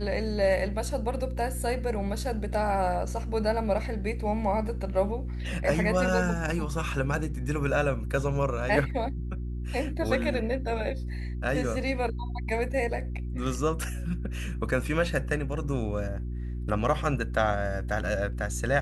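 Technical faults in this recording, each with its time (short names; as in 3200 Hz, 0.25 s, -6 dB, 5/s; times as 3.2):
hum 60 Hz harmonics 6 -33 dBFS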